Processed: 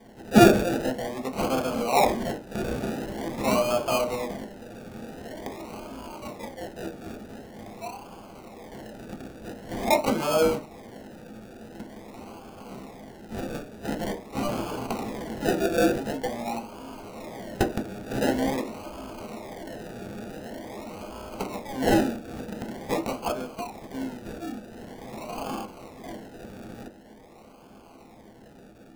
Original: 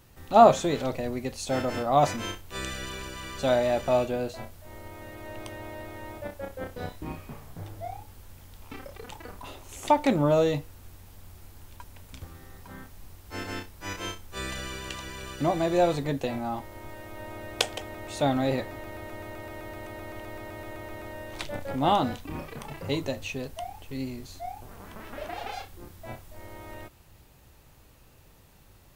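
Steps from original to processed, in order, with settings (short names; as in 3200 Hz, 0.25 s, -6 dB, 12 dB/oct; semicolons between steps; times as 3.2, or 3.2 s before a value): tilt +3.5 dB/oct; decimation with a swept rate 33×, swing 60% 0.46 Hz; on a send: reverb RT60 0.25 s, pre-delay 3 ms, DRR 2 dB; on the sum: gain -1 dB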